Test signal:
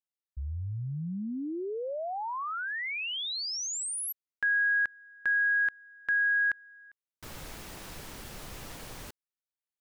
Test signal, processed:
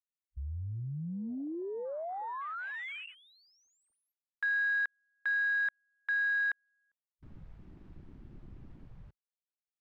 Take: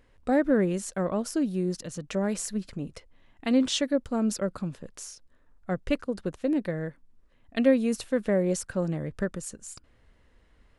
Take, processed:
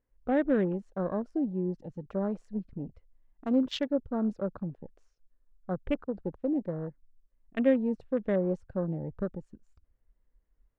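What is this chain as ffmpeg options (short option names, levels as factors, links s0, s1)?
-af "adynamicsmooth=sensitivity=2:basefreq=2000,afwtdn=0.0126,volume=0.708"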